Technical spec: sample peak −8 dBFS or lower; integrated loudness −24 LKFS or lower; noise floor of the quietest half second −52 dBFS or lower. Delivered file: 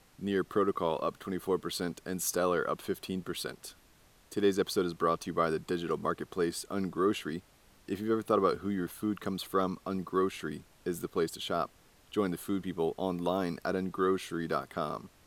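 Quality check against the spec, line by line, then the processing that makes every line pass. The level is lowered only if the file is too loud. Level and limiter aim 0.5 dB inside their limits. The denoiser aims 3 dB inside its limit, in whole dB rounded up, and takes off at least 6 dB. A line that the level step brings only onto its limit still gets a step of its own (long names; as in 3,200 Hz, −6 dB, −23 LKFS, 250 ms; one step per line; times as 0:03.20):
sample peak −13.5 dBFS: in spec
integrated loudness −33.0 LKFS: in spec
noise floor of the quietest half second −62 dBFS: in spec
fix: no processing needed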